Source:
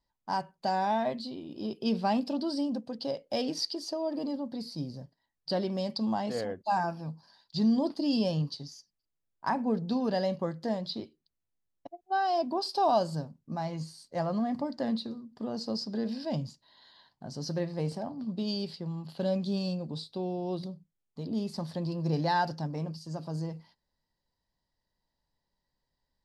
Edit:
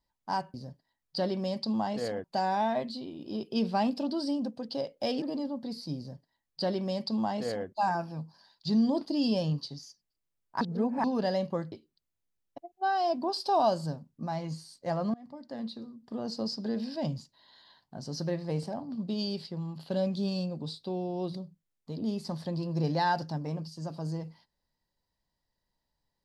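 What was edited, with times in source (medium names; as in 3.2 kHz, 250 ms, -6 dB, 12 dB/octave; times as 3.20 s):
3.52–4.11 s: delete
4.87–6.57 s: copy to 0.54 s
9.50–9.93 s: reverse
10.61–11.01 s: delete
14.43–15.56 s: fade in, from -23.5 dB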